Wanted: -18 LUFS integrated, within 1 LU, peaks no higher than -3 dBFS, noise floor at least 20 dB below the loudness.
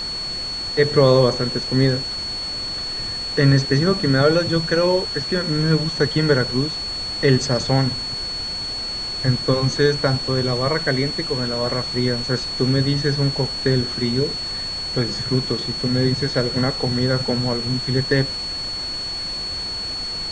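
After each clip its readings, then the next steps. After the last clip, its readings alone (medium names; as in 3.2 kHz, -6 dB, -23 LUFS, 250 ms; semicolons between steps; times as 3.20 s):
steady tone 4.4 kHz; tone level -25 dBFS; noise floor -27 dBFS; noise floor target -40 dBFS; loudness -20.0 LUFS; peak level -2.0 dBFS; loudness target -18.0 LUFS
-> band-stop 4.4 kHz, Q 30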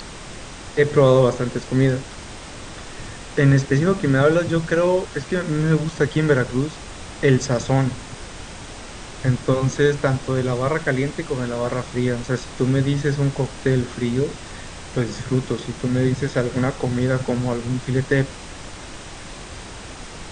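steady tone not found; noise floor -37 dBFS; noise floor target -41 dBFS
-> noise print and reduce 6 dB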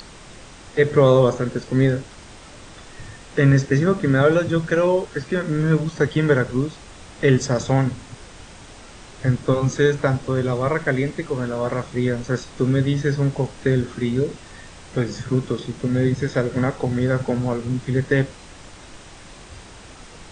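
noise floor -43 dBFS; loudness -21.0 LUFS; peak level -2.5 dBFS; loudness target -18.0 LUFS
-> trim +3 dB; peak limiter -3 dBFS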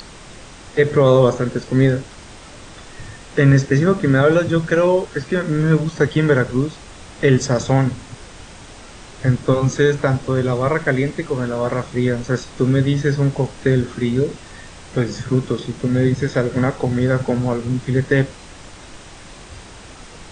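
loudness -18.5 LUFS; peak level -3.0 dBFS; noise floor -40 dBFS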